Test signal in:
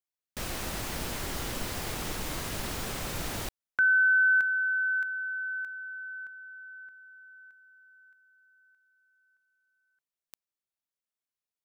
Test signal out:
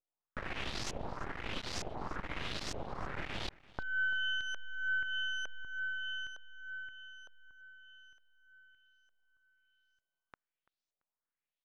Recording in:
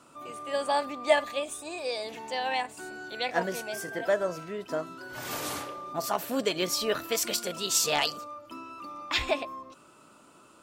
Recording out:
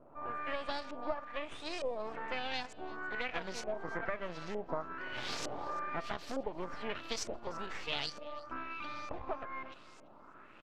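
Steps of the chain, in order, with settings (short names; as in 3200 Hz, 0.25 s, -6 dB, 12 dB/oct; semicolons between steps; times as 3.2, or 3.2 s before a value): compressor 10:1, threshold -34 dBFS; half-wave rectifier; LFO low-pass saw up 1.1 Hz 570–6400 Hz; on a send: feedback echo 0.338 s, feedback 26%, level -21 dB; on the sum: gain +1.5 dB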